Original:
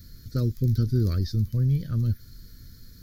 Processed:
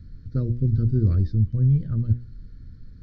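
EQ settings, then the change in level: tape spacing loss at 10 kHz 38 dB; bass shelf 280 Hz +6 dB; hum notches 60/120/180/240/300/360/420/480/540/600 Hz; 0.0 dB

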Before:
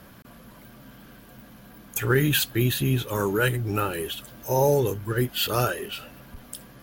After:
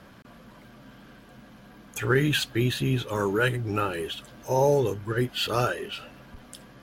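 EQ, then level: distance through air 55 m; bass shelf 160 Hz -4 dB; 0.0 dB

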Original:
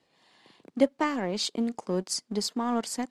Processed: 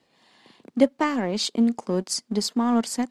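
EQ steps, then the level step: peaking EQ 230 Hz +5.5 dB 0.27 oct; +3.5 dB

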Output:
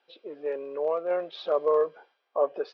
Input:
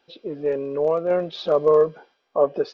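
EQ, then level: band-pass 480–3800 Hz; -4.0 dB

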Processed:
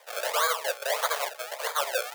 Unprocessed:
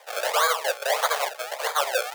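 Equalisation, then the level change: treble shelf 9.5 kHz +4 dB; band-stop 780 Hz, Q 12; -4.0 dB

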